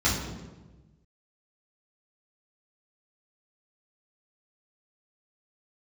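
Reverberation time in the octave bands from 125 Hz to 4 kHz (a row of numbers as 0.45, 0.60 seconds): 1.7, 1.4, 1.3, 1.1, 0.90, 0.80 seconds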